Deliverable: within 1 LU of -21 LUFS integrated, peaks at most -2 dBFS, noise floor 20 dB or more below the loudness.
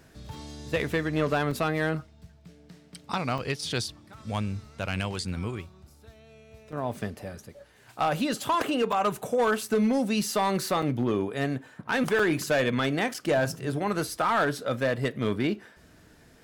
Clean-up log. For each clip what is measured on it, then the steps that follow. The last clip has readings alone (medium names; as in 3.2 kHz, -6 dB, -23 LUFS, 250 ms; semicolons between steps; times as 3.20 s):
clipped samples 0.8%; clipping level -18.5 dBFS; dropouts 7; longest dropout 4.4 ms; loudness -28.0 LUFS; peak level -18.5 dBFS; loudness target -21.0 LUFS
-> clip repair -18.5 dBFS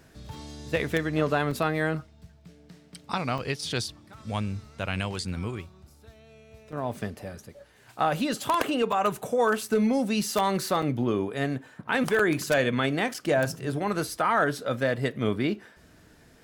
clipped samples 0.0%; dropouts 7; longest dropout 4.4 ms
-> interpolate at 1.51/3.38/6.72/8.92/10.82/12.19/13.14 s, 4.4 ms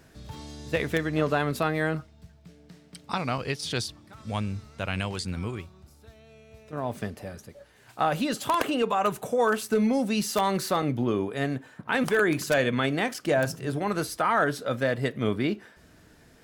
dropouts 0; loudness -27.5 LUFS; peak level -9.5 dBFS; loudness target -21.0 LUFS
-> trim +6.5 dB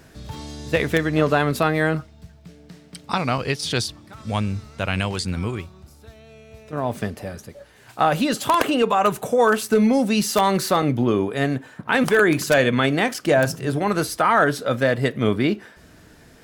loudness -21.0 LUFS; peak level -3.0 dBFS; noise floor -49 dBFS